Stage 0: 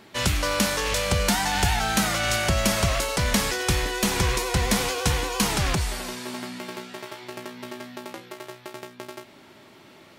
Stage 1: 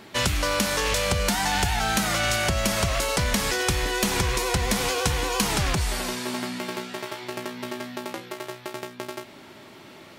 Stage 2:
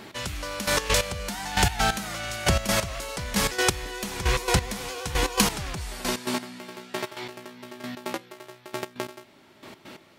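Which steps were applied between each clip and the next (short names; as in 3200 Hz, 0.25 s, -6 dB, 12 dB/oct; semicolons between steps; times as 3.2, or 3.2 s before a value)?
compressor, threshold -24 dBFS, peak gain reduction 8 dB; gain +4 dB
step gate "x.....x." 134 bpm -12 dB; gain +3 dB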